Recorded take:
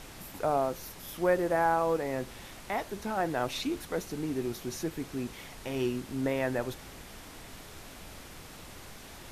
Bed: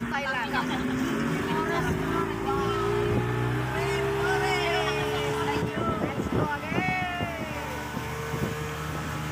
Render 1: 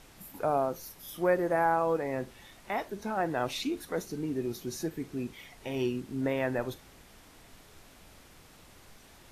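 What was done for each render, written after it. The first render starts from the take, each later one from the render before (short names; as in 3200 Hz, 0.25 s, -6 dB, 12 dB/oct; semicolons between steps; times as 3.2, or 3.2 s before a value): noise print and reduce 8 dB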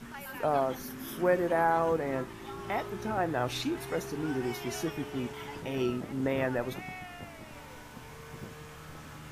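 add bed -15 dB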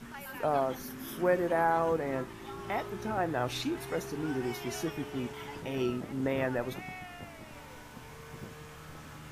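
gain -1 dB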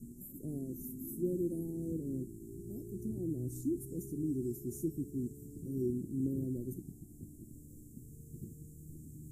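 Chebyshev band-stop 350–7500 Hz, order 4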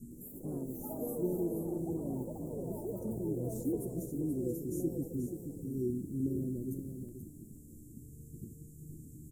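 echoes that change speed 0.108 s, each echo +5 st, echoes 3, each echo -6 dB; echo 0.481 s -8 dB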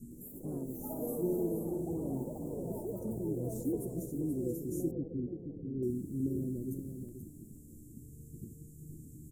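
0.77–2.82 flutter echo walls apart 10.1 m, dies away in 0.47 s; 4.91–5.83 Chebyshev low-pass 560 Hz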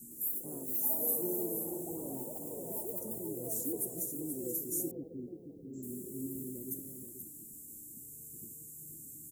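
RIAA curve recording; 5.76–6.46 spectral repair 300–7700 Hz after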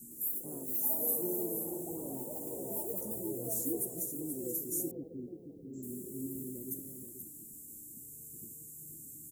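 2.29–3.83 doubler 15 ms -4 dB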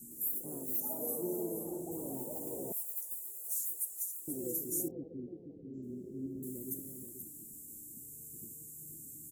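0.8–1.92 high shelf 10000 Hz -10 dB; 2.72–4.28 Bessel high-pass 2900 Hz; 4.88–6.43 air absorption 240 m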